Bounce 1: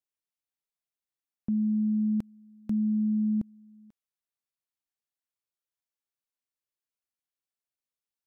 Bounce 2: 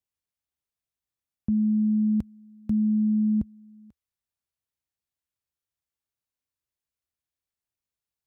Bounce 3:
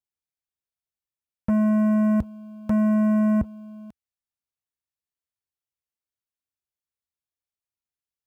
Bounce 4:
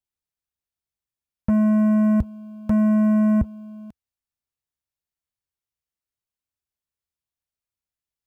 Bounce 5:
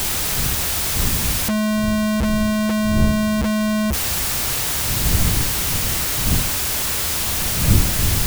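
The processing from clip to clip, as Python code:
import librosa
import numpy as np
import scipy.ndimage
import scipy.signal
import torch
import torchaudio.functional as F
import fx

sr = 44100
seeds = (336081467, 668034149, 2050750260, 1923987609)

y1 = fx.peak_eq(x, sr, hz=70.0, db=14.5, octaves=1.9)
y2 = fx.leveller(y1, sr, passes=3)
y3 = fx.low_shelf(y2, sr, hz=130.0, db=8.5)
y4 = np.sign(y3) * np.sqrt(np.mean(np.square(y3)))
y4 = fx.dmg_wind(y4, sr, seeds[0], corner_hz=110.0, level_db=-29.0)
y4 = y4 * 10.0 ** (5.5 / 20.0)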